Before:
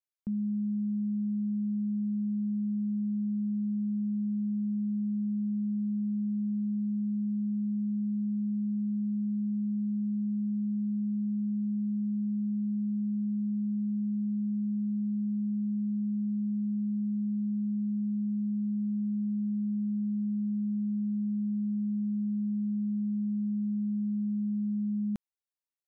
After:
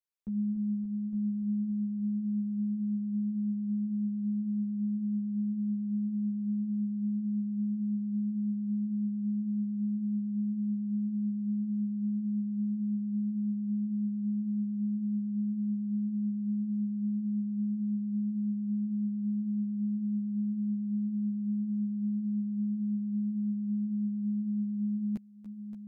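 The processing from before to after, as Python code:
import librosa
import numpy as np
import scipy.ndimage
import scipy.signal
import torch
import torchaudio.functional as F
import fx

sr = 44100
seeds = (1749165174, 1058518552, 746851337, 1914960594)

y = fx.echo_heads(x, sr, ms=287, heads='all three', feedback_pct=48, wet_db=-12)
y = fx.ensemble(y, sr)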